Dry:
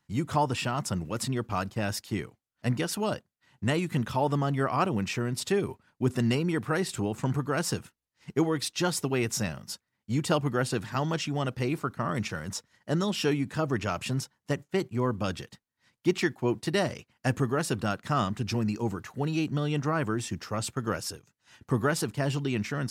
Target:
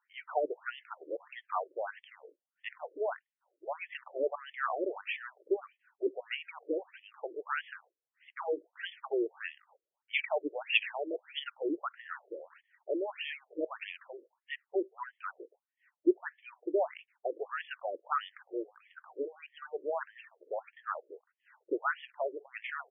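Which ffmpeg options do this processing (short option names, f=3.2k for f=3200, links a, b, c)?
-filter_complex "[0:a]asplit=3[a][b][c];[a]afade=t=out:st=10.13:d=0.02[d];[b]highshelf=f=1.8k:t=q:w=3:g=12,afade=t=in:st=10.13:d=0.02,afade=t=out:st=11.38:d=0.02[e];[c]afade=t=in:st=11.38:d=0.02[f];[d][e][f]amix=inputs=3:normalize=0,afftfilt=real='re*between(b*sr/1024,420*pow(2500/420,0.5+0.5*sin(2*PI*1.6*pts/sr))/1.41,420*pow(2500/420,0.5+0.5*sin(2*PI*1.6*pts/sr))*1.41)':imag='im*between(b*sr/1024,420*pow(2500/420,0.5+0.5*sin(2*PI*1.6*pts/sr))/1.41,420*pow(2500/420,0.5+0.5*sin(2*PI*1.6*pts/sr))*1.41)':win_size=1024:overlap=0.75"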